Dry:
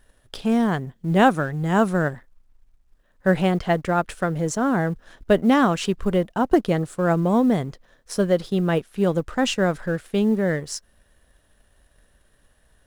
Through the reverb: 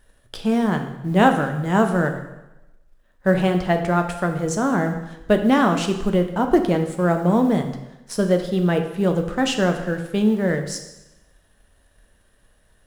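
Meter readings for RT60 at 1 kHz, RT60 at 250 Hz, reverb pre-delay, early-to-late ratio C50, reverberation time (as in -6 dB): 0.95 s, 0.95 s, 4 ms, 8.5 dB, 0.95 s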